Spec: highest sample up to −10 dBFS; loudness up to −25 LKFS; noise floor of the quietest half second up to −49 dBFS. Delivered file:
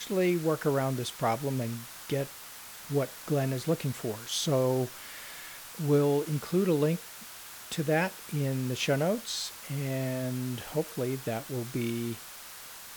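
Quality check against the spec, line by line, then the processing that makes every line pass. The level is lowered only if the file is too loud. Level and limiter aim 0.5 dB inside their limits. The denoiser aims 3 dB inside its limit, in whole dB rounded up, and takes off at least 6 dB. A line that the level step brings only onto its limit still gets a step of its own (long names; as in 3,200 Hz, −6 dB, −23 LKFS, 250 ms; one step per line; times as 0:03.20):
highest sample −13.5 dBFS: in spec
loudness −30.5 LKFS: in spec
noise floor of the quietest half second −46 dBFS: out of spec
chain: broadband denoise 6 dB, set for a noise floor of −46 dBFS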